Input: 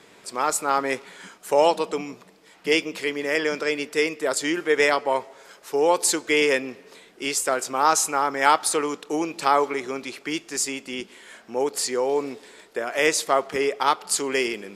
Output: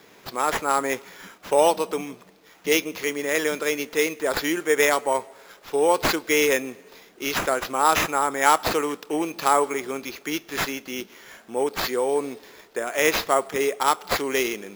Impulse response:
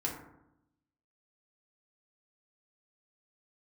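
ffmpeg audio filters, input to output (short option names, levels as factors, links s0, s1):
-af "acrusher=samples=5:mix=1:aa=0.000001"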